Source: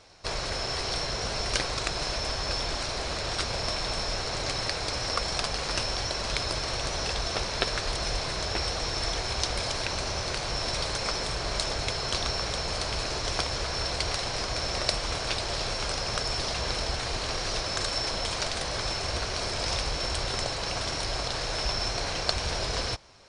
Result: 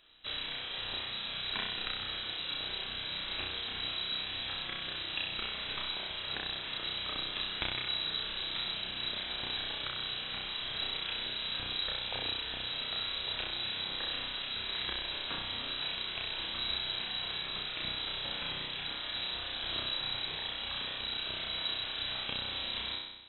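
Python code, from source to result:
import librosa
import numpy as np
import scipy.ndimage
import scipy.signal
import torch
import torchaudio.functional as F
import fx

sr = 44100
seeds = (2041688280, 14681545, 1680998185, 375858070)

p1 = fx.dereverb_blind(x, sr, rt60_s=0.57)
p2 = p1 + fx.room_flutter(p1, sr, wall_m=5.5, rt60_s=1.0, dry=0)
p3 = fx.freq_invert(p2, sr, carrier_hz=3900)
y = F.gain(torch.from_numpy(p3), -9.0).numpy()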